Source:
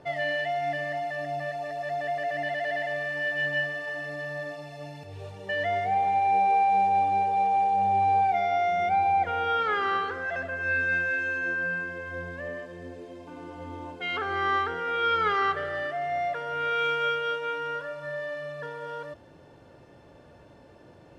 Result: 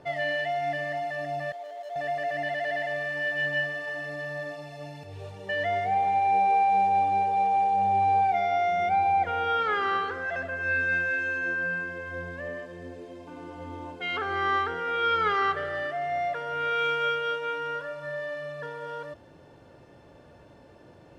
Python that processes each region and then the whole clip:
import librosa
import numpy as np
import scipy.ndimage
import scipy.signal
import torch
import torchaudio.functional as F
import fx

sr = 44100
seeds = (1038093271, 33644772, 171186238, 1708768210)

y = fx.chain(x, sr, fx.median_filter(points=25),
    fx.ladder_highpass(hz=390.0, resonance_pct=35), at=(1.52, 1.96))